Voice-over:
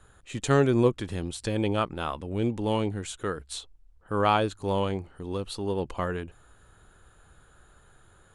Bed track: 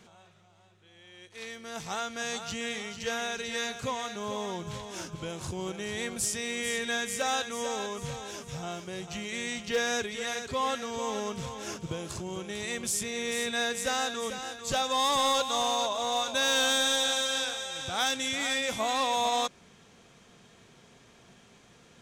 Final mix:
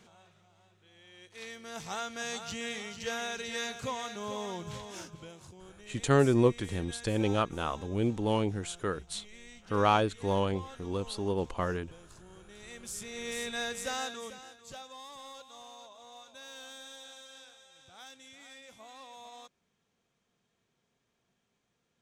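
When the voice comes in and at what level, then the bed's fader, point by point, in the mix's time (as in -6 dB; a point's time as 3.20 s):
5.60 s, -2.0 dB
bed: 4.90 s -3 dB
5.59 s -17.5 dB
12.42 s -17.5 dB
13.29 s -5.5 dB
14.04 s -5.5 dB
15.07 s -22 dB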